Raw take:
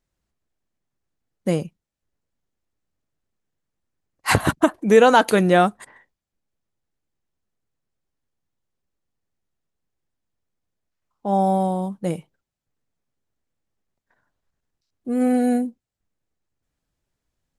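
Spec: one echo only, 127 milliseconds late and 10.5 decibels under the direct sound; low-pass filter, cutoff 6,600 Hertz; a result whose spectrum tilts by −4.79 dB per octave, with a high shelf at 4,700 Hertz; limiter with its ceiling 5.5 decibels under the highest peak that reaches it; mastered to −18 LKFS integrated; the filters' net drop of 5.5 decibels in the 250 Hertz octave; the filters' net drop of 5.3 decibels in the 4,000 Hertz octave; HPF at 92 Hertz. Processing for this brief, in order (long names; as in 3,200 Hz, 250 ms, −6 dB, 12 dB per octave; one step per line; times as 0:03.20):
high-pass filter 92 Hz
low-pass filter 6,600 Hz
parametric band 250 Hz −7 dB
parametric band 4,000 Hz −4.5 dB
high-shelf EQ 4,700 Hz −5 dB
brickwall limiter −7.5 dBFS
single-tap delay 127 ms −10.5 dB
level +4.5 dB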